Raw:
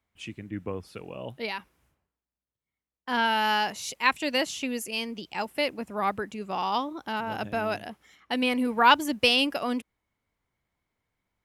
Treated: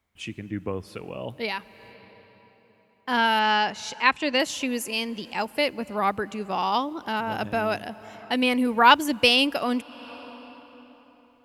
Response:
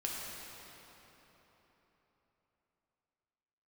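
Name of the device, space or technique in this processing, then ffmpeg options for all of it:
ducked reverb: -filter_complex "[0:a]asettb=1/sr,asplit=3[s0][s1][s2];[s0]atrim=end=3.394[s3];[s1]atrim=start=3.39:end=4.4,asetpts=PTS-STARTPTS,afade=t=in:d=0.004:c=qsin,afade=t=out:st=1.006:d=0.004:c=qsin,lowpass=5200[s4];[s2]atrim=start=4.396[s5];[s3][s4]acrossfade=d=0.004:c1=hsin:c2=qsin[s6];[s6][s5]acrossfade=d=0.004:c1=qsin:c2=hsin,asplit=3[s7][s8][s9];[1:a]atrim=start_sample=2205[s10];[s8][s10]afir=irnorm=-1:irlink=0[s11];[s9]apad=whole_len=504685[s12];[s11][s12]sidechaincompress=threshold=0.01:ratio=5:attack=12:release=338,volume=0.237[s13];[s7][s13]amix=inputs=2:normalize=0,volume=1.41"

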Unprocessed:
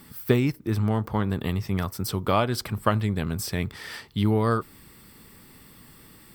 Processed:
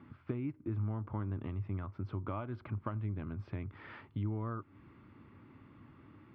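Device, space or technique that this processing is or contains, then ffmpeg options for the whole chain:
bass amplifier: -af "acompressor=threshold=0.0224:ratio=4,highpass=81,equalizer=f=99:t=q:w=4:g=7,equalizer=f=180:t=q:w=4:g=-6,equalizer=f=300:t=q:w=4:g=5,equalizer=f=460:t=q:w=4:g=-8,equalizer=f=760:t=q:w=4:g=-5,equalizer=f=1800:t=q:w=4:g=-9,lowpass=f=2100:w=0.5412,lowpass=f=2100:w=1.3066,volume=0.668"

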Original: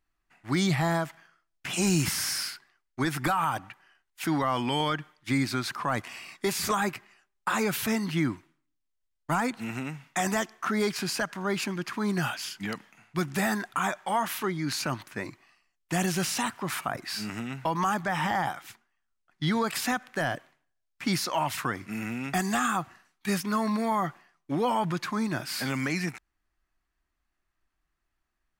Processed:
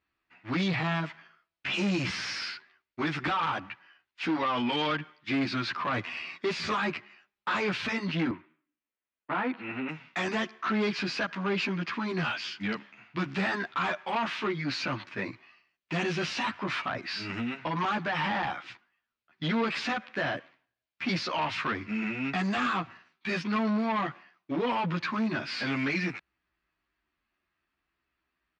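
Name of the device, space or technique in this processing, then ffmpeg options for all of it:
barber-pole flanger into a guitar amplifier: -filter_complex "[0:a]asplit=2[s0][s1];[s1]adelay=11.8,afreqshift=-0.54[s2];[s0][s2]amix=inputs=2:normalize=1,asoftclip=type=tanh:threshold=0.0335,highpass=87,equalizer=f=140:t=q:w=4:g=-6,equalizer=f=770:t=q:w=4:g=-4,equalizer=f=2500:t=q:w=4:g=4,lowpass=f=4500:w=0.5412,lowpass=f=4500:w=1.3066,asettb=1/sr,asplit=3[s3][s4][s5];[s3]atrim=end=8.314[s6];[s4]atrim=start=8.31:end=9.89,asetpts=PTS-STARTPTS,afade=t=in:d=0.004:c=qsin,afade=t=out:st=1.576:d=0.004:c=qsin,acrossover=split=180 3100:gain=0.224 1 0.0708[s7][s8][s9];[s7][s8][s9]amix=inputs=3:normalize=0[s10];[s5]atrim=start=9.886[s11];[s6][s10]acrossfade=d=0.004:c1=hsin:c2=qsin[s12];[s12][s11]acrossfade=d=0.004:c1=qsin:c2=hsin,volume=2"

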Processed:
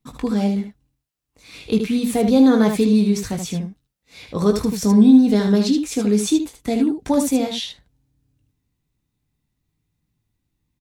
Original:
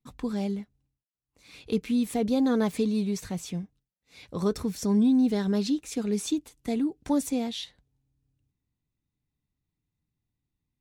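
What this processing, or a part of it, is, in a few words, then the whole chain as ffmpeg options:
slapback doubling: -filter_complex "[0:a]asplit=3[s0][s1][s2];[s1]adelay=19,volume=0.422[s3];[s2]adelay=76,volume=0.473[s4];[s0][s3][s4]amix=inputs=3:normalize=0,volume=2.51"

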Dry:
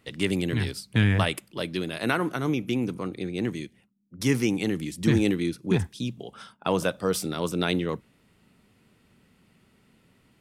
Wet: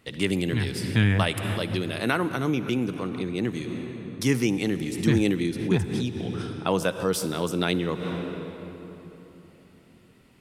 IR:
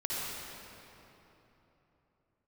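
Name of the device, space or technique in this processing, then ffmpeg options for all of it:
ducked reverb: -filter_complex "[0:a]asplit=3[s0][s1][s2];[1:a]atrim=start_sample=2205[s3];[s1][s3]afir=irnorm=-1:irlink=0[s4];[s2]apad=whole_len=458941[s5];[s4][s5]sidechaincompress=threshold=0.0126:ratio=6:attack=32:release=133,volume=0.447[s6];[s0][s6]amix=inputs=2:normalize=0"

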